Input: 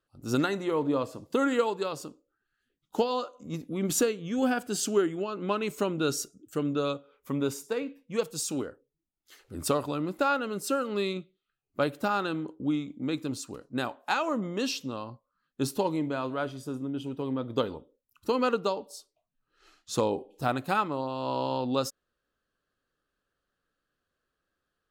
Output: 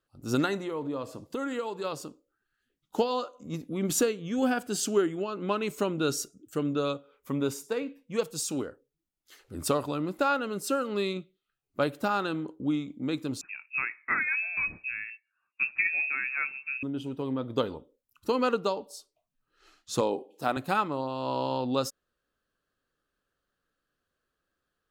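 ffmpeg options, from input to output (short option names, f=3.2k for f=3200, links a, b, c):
-filter_complex "[0:a]asettb=1/sr,asplit=3[a][b][c];[a]atrim=end=0.574[d];[b]atrim=start=0.57:end=1.84,asetpts=PTS-STARTPTS,afade=t=in:d=0.004:c=qsin,afade=t=out:st=1.266:d=0.004:c=qsin,acompressor=threshold=-34dB:ratio=2:attack=3.2:release=140:knee=1:detection=peak[e];[c]atrim=start=1.836[f];[d][e]acrossfade=d=0.004:c1=hsin:c2=qsin[g];[g][f]acrossfade=d=0.004:c1=qsin:c2=hsin,asettb=1/sr,asplit=3[h][i][j];[h]atrim=end=13.414[k];[i]atrim=start=13.41:end=16.83,asetpts=PTS-STARTPTS,afade=t=in:d=0.004:c=qsin,afade=t=out:st=3.416:d=0.004:c=qsin,lowpass=f=2.4k:t=q:w=0.5098,lowpass=f=2.4k:t=q:w=0.6013,lowpass=f=2.4k:t=q:w=0.9,lowpass=f=2.4k:t=q:w=2.563,afreqshift=-2800[l];[j]atrim=start=16.826[m];[k][l]acrossfade=d=0.004:c1=hsin:c2=qsin[n];[n][m]acrossfade=d=0.004:c1=qsin:c2=hsin,asettb=1/sr,asplit=3[o][p][q];[o]atrim=end=20.014[r];[p]atrim=start=20.01:end=20.57,asetpts=PTS-STARTPTS,afade=t=in:d=0.004:c=qsin,afade=t=out:st=0.556:d=0.004:c=qsin,highpass=220[s];[q]atrim=start=20.566[t];[r][s]acrossfade=d=0.004:c1=hsin:c2=qsin[u];[u][t]acrossfade=d=0.004:c1=qsin:c2=hsin"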